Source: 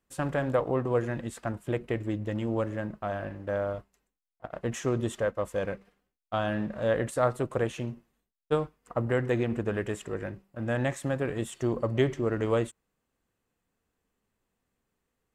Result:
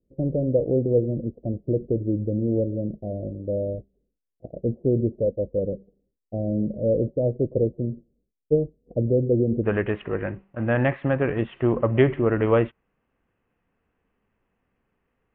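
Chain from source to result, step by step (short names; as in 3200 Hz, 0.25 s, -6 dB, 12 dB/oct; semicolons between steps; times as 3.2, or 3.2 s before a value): steep low-pass 560 Hz 48 dB/oct, from 9.63 s 2900 Hz; gain +7 dB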